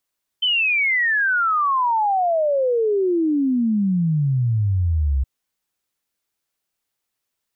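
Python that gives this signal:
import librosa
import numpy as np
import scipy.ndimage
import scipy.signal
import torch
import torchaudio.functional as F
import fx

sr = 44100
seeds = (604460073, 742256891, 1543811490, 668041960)

y = fx.ess(sr, length_s=4.82, from_hz=3100.0, to_hz=64.0, level_db=-16.0)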